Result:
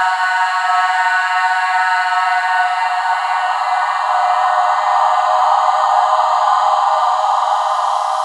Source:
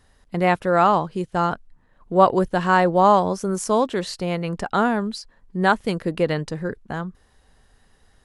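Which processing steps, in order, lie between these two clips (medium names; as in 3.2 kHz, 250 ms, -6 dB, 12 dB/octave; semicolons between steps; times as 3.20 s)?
brick-wall FIR high-pass 620 Hz; tilt EQ +2 dB/octave; flutter echo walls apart 9 m, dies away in 1.2 s; Paulstretch 15×, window 0.50 s, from 2.72 s; trim +1 dB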